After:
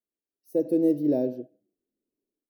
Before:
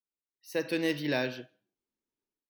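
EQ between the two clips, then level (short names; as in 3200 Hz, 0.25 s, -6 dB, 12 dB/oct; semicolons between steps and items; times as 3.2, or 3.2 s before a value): EQ curve 130 Hz 0 dB, 300 Hz +10 dB, 650 Hz +4 dB, 1200 Hz -27 dB, 3200 Hz -28 dB, 11000 Hz -4 dB; 0.0 dB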